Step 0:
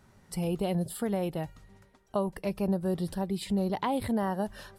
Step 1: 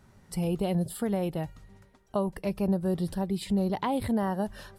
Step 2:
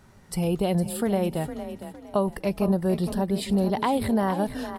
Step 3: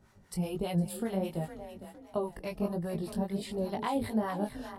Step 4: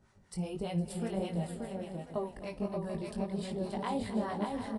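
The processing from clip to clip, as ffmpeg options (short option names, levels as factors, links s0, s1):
-af "lowshelf=f=240:g=3.5"
-filter_complex "[0:a]equalizer=f=88:w=0.35:g=-3,asplit=5[s0][s1][s2][s3][s4];[s1]adelay=459,afreqshift=30,volume=0.282[s5];[s2]adelay=918,afreqshift=60,volume=0.0933[s6];[s3]adelay=1377,afreqshift=90,volume=0.0305[s7];[s4]adelay=1836,afreqshift=120,volume=0.0101[s8];[s0][s5][s6][s7][s8]amix=inputs=5:normalize=0,volume=1.88"
-filter_complex "[0:a]flanger=delay=17.5:depth=4.6:speed=1.4,acrossover=split=730[s0][s1];[s0]aeval=exprs='val(0)*(1-0.7/2+0.7/2*cos(2*PI*5*n/s))':c=same[s2];[s1]aeval=exprs='val(0)*(1-0.7/2-0.7/2*cos(2*PI*5*n/s))':c=same[s3];[s2][s3]amix=inputs=2:normalize=0,volume=0.794"
-af "aecho=1:1:56|264|580|741:0.133|0.2|0.596|0.266,aresample=22050,aresample=44100,volume=0.668"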